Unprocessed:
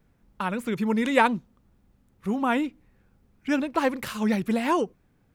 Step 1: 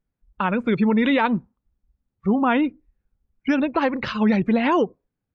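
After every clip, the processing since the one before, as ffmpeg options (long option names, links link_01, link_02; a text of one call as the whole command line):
ffmpeg -i in.wav -af "lowpass=frequency=6400:width=0.5412,lowpass=frequency=6400:width=1.3066,afftdn=noise_reduction=26:noise_floor=-42,alimiter=limit=-18dB:level=0:latency=1:release=86,volume=7.5dB" out.wav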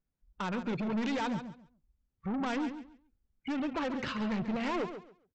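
ffmpeg -i in.wav -af "aresample=16000,asoftclip=type=tanh:threshold=-24dB,aresample=44100,aecho=1:1:138|276|414:0.316|0.0664|0.0139,volume=-6.5dB" out.wav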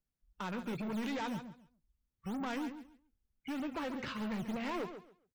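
ffmpeg -i in.wav -filter_complex "[0:a]acrossover=split=290|1200[link_01][link_02][link_03];[link_01]acrusher=samples=9:mix=1:aa=0.000001:lfo=1:lforange=14.4:lforate=3.2[link_04];[link_03]asplit=2[link_05][link_06];[link_06]adelay=17,volume=-7.5dB[link_07];[link_05][link_07]amix=inputs=2:normalize=0[link_08];[link_04][link_02][link_08]amix=inputs=3:normalize=0,volume=-5dB" out.wav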